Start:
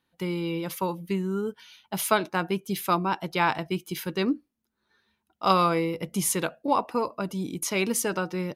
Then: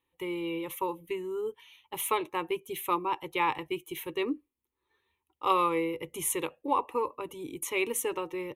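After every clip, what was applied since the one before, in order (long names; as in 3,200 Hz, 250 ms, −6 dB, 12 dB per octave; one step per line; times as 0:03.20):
phaser with its sweep stopped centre 1,000 Hz, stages 8
level −1.5 dB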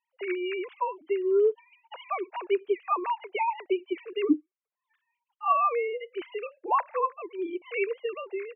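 three sine waves on the formant tracks
level +3 dB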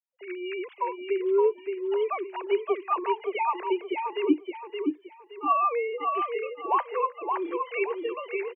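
fade in at the beginning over 0.64 s
repeating echo 570 ms, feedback 30%, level −4.5 dB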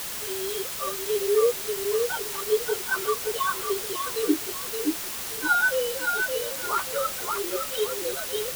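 partials spread apart or drawn together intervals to 115%
bit-depth reduction 6 bits, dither triangular
level +2.5 dB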